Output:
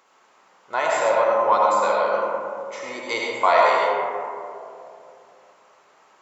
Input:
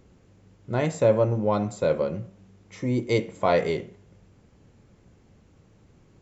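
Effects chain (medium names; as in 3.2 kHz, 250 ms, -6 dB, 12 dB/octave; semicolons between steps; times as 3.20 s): in parallel at -2.5 dB: peak limiter -15.5 dBFS, peak gain reduction 7.5 dB; on the sum: resonant high-pass 980 Hz, resonance Q 2.3; reverberation RT60 2.7 s, pre-delay 40 ms, DRR -3.5 dB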